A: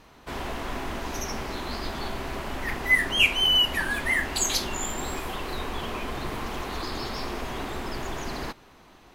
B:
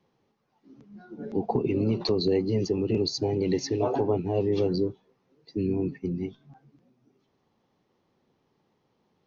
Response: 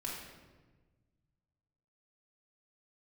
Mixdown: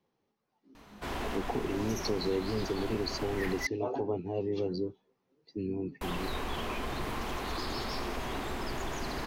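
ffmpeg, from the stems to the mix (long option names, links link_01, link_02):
-filter_complex "[0:a]asoftclip=type=tanh:threshold=-21dB,adelay=750,volume=-2.5dB,asplit=3[link_01][link_02][link_03];[link_01]atrim=end=3.67,asetpts=PTS-STARTPTS,afade=type=out:start_time=3.666:duration=0.004:curve=hsin[link_04];[link_02]atrim=start=3.67:end=6.01,asetpts=PTS-STARTPTS,volume=0[link_05];[link_03]atrim=start=6.01,asetpts=PTS-STARTPTS,afade=type=in:duration=0.004:curve=hsin[link_06];[link_04][link_05][link_06]concat=n=3:v=0:a=1[link_07];[1:a]equalizer=frequency=130:width_type=o:width=0.77:gain=-4.5,volume=-7dB,asplit=2[link_08][link_09];[link_09]apad=whole_len=436213[link_10];[link_07][link_10]sidechaincompress=threshold=-30dB:ratio=4:attack=6.2:release=607[link_11];[link_11][link_08]amix=inputs=2:normalize=0"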